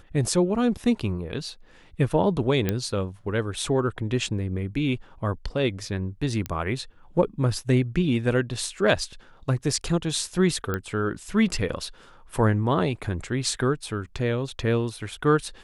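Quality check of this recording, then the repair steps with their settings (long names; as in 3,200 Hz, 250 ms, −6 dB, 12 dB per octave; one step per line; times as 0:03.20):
0:02.69: click −10 dBFS
0:06.46: click −14 dBFS
0:10.74: click −14 dBFS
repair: click removal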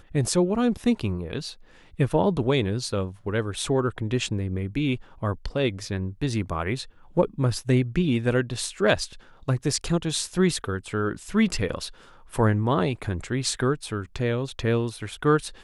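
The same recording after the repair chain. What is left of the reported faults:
0:02.69: click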